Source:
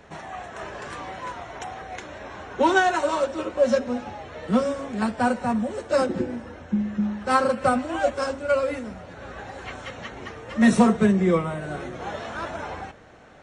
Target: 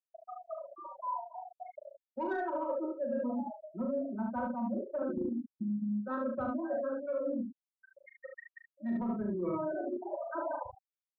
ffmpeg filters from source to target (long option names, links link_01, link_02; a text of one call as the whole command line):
ffmpeg -i in.wav -af "adynamicequalizer=threshold=0.01:dfrequency=980:dqfactor=5.2:tfrequency=980:tqfactor=5.2:attack=5:release=100:ratio=0.375:range=2:mode=boostabove:tftype=bell,atempo=1.2,bandreject=frequency=50:width_type=h:width=6,bandreject=frequency=100:width_type=h:width=6,bandreject=frequency=150:width_type=h:width=6,bandreject=frequency=200:width_type=h:width=6,bandreject=frequency=250:width_type=h:width=6,bandreject=frequency=300:width_type=h:width=6,afftfilt=real='re*gte(hypot(re,im),0.0398)':imag='im*gte(hypot(re,im),0.0398)':win_size=1024:overlap=0.75,lowpass=5700,aecho=1:1:3.2:0.57,acrusher=bits=5:mix=0:aa=0.000001,afftfilt=real='re*gte(hypot(re,im),0.112)':imag='im*gte(hypot(re,im),0.112)':win_size=1024:overlap=0.75,acontrast=52,equalizer=frequency=3300:width=0.33:gain=-13.5,aecho=1:1:39|73:0.531|0.562,areverse,acompressor=threshold=-27dB:ratio=12,areverse,volume=-4.5dB" out.wav